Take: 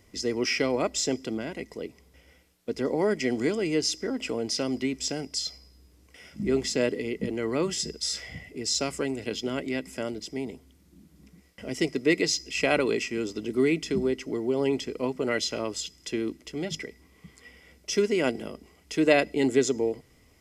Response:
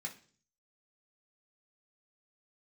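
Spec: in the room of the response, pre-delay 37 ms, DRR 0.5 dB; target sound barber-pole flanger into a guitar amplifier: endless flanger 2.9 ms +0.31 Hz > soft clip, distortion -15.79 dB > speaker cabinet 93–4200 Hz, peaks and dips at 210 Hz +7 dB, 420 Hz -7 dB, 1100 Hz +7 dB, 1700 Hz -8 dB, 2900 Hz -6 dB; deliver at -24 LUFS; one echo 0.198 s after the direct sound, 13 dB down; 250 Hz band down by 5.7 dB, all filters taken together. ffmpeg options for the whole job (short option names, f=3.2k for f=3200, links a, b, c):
-filter_complex "[0:a]equalizer=f=250:t=o:g=-8.5,aecho=1:1:198:0.224,asplit=2[a][b];[1:a]atrim=start_sample=2205,adelay=37[c];[b][c]afir=irnorm=-1:irlink=0,volume=1dB[d];[a][d]amix=inputs=2:normalize=0,asplit=2[e][f];[f]adelay=2.9,afreqshift=0.31[g];[e][g]amix=inputs=2:normalize=1,asoftclip=threshold=-21dB,highpass=93,equalizer=f=210:t=q:w=4:g=7,equalizer=f=420:t=q:w=4:g=-7,equalizer=f=1.1k:t=q:w=4:g=7,equalizer=f=1.7k:t=q:w=4:g=-8,equalizer=f=2.9k:t=q:w=4:g=-6,lowpass=f=4.2k:w=0.5412,lowpass=f=4.2k:w=1.3066,volume=11dB"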